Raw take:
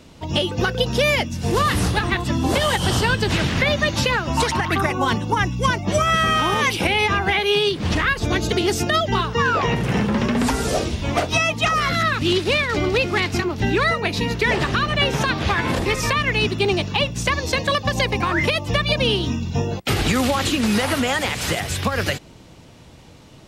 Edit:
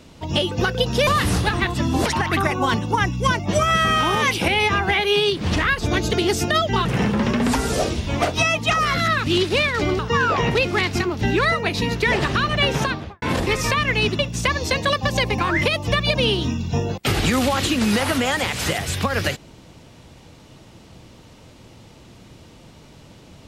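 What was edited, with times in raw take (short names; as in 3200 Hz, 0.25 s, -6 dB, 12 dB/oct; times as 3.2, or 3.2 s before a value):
1.07–1.57 cut
2.56–4.45 cut
9.24–9.8 move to 12.94
15.17–15.61 studio fade out
16.58–17.01 cut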